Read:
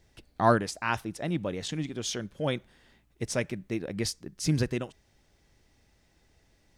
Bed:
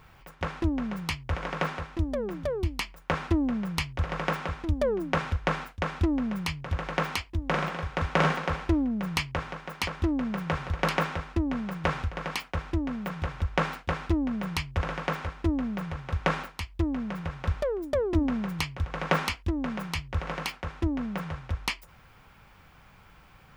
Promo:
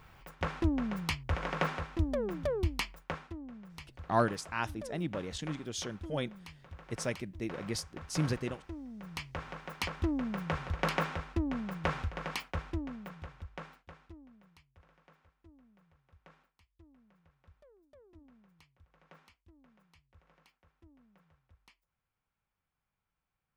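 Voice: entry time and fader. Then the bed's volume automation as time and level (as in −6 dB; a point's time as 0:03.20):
3.70 s, −5.5 dB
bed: 0:02.95 −2.5 dB
0:03.30 −19 dB
0:08.80 −19 dB
0:09.60 −5 dB
0:12.56 −5 dB
0:14.66 −33.5 dB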